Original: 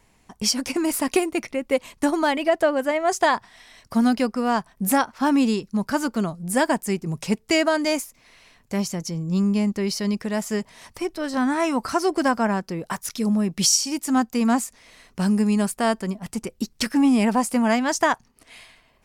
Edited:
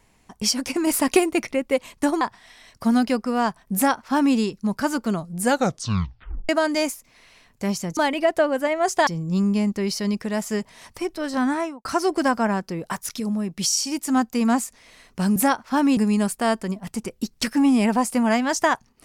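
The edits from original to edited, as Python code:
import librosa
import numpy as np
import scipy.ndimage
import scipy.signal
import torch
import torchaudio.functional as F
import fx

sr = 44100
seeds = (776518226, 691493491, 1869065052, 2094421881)

y = fx.studio_fade_out(x, sr, start_s=11.49, length_s=0.36)
y = fx.edit(y, sr, fx.clip_gain(start_s=0.87, length_s=0.75, db=3.0),
    fx.move(start_s=2.21, length_s=1.1, to_s=9.07),
    fx.duplicate(start_s=4.85, length_s=0.61, to_s=15.36),
    fx.tape_stop(start_s=6.52, length_s=1.07),
    fx.clip_gain(start_s=13.2, length_s=0.57, db=-4.0), tone=tone)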